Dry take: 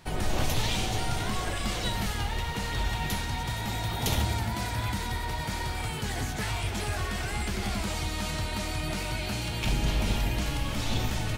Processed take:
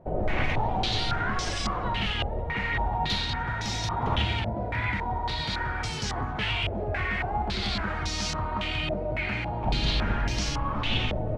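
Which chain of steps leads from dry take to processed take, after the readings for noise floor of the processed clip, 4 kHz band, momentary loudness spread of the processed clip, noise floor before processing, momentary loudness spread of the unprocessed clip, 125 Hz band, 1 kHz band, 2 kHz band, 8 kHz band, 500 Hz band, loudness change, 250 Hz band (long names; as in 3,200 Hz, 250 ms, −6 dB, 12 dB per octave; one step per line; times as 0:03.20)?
−32 dBFS, +3.0 dB, 3 LU, −33 dBFS, 4 LU, 0.0 dB, +4.5 dB, +4.0 dB, −4.0 dB, +3.5 dB, +2.0 dB, +0.5 dB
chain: low-pass on a step sequencer 3.6 Hz 590–5,600 Hz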